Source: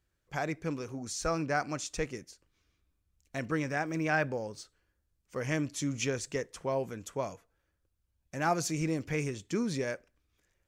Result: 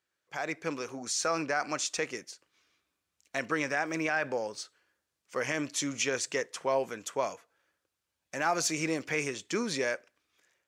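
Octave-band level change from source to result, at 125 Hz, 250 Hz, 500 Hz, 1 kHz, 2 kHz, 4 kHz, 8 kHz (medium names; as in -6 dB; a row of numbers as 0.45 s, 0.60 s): -8.5 dB, -2.0 dB, +1.5 dB, +1.5 dB, +3.5 dB, +6.0 dB, +5.5 dB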